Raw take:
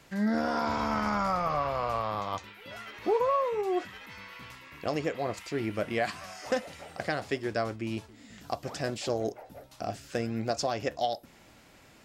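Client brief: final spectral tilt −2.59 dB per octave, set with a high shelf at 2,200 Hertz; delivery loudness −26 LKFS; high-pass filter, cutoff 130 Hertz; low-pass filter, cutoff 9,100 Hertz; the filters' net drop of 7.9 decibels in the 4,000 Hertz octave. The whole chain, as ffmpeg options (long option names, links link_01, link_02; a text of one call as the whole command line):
ffmpeg -i in.wav -af "highpass=130,lowpass=9100,highshelf=frequency=2200:gain=-4,equalizer=frequency=4000:width_type=o:gain=-6.5,volume=6.5dB" out.wav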